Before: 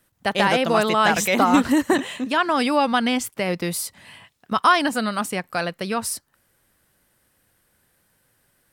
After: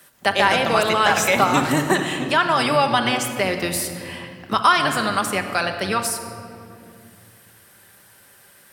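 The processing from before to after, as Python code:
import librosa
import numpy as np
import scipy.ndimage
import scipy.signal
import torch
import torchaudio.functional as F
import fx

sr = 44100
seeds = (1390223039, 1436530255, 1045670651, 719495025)

y = fx.octave_divider(x, sr, octaves=1, level_db=1.0)
y = fx.highpass(y, sr, hz=580.0, slope=6)
y = fx.room_shoebox(y, sr, seeds[0], volume_m3=2500.0, walls='mixed', distance_m=1.2)
y = fx.band_squash(y, sr, depth_pct=40)
y = F.gain(torch.from_numpy(y), 2.5).numpy()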